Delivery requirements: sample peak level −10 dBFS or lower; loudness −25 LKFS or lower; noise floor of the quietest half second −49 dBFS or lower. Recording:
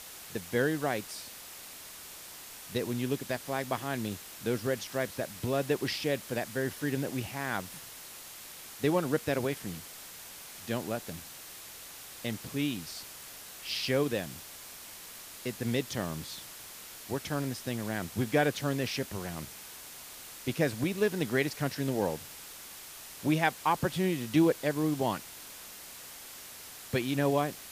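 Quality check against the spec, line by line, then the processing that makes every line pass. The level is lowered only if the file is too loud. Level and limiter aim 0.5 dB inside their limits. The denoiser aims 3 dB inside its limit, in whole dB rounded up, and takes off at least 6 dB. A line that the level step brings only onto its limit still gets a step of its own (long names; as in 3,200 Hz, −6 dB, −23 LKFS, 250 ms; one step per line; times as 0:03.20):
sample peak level −12.0 dBFS: in spec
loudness −32.5 LKFS: in spec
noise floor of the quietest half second −47 dBFS: out of spec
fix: broadband denoise 6 dB, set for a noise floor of −47 dBFS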